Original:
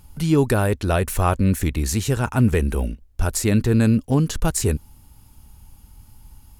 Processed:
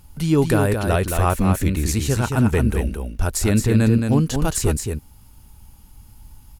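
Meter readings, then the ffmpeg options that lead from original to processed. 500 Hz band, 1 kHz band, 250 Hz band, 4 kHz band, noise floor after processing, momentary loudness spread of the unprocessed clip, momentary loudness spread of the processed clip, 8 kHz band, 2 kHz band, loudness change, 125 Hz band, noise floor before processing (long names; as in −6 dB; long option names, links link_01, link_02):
+1.0 dB, +1.0 dB, +1.0 dB, +1.0 dB, −47 dBFS, 7 LU, 8 LU, +1.0 dB, +1.0 dB, +1.0 dB, +1.0 dB, −51 dBFS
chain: -af "acrusher=bits=10:mix=0:aa=0.000001,aecho=1:1:220:0.531"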